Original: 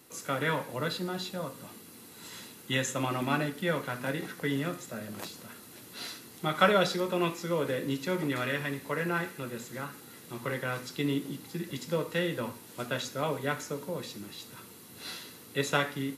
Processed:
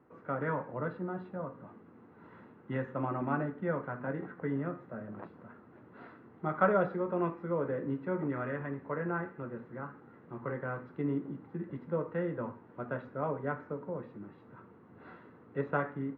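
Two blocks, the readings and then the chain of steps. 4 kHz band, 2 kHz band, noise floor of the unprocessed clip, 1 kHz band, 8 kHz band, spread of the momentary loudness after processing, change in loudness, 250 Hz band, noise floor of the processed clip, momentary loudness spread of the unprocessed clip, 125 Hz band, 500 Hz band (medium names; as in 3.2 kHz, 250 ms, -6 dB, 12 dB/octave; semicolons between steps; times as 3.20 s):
under -30 dB, -8.0 dB, -51 dBFS, -3.0 dB, under -40 dB, 20 LU, -3.5 dB, -2.5 dB, -57 dBFS, 15 LU, -2.5 dB, -2.5 dB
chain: low-pass 1.5 kHz 24 dB/octave; trim -2.5 dB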